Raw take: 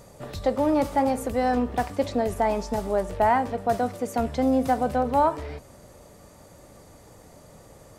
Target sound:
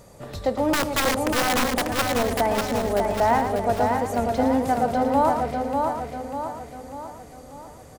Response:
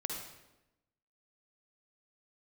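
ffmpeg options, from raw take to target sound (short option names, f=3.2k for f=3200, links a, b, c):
-filter_complex "[0:a]asplit=2[a][b];[b]aecho=0:1:113:0.422[c];[a][c]amix=inputs=2:normalize=0,asettb=1/sr,asplit=3[d][e][f];[d]atrim=end=0.734[g];[e]atrim=start=0.73:end=2.05,asetpts=PTS-STARTPTS,afade=t=in:d=0.004:c=qsin,afade=t=out:st=1.316:d=0.004:c=qsin,aeval=exprs='(mod(6.68*val(0)+1,2)-1)/6.68':c=same[h];[f]atrim=start=2.046[i];[g][h]acrossfade=d=0.004:c1=hsin:c2=qsin[j];[j][i]acrossfade=d=0.004:c1=qsin:c2=hsin,asplit=2[k][l];[l]aecho=0:1:593|1186|1779|2372|2965|3558:0.631|0.309|0.151|0.0742|0.0364|0.0178[m];[k][m]amix=inputs=2:normalize=0"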